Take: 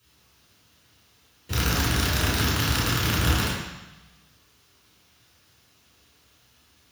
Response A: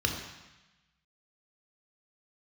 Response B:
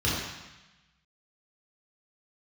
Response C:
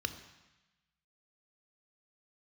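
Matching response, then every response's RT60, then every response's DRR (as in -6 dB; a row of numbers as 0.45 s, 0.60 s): B; 1.0 s, 1.0 s, 1.0 s; 1.5 dB, -8.0 dB, 8.5 dB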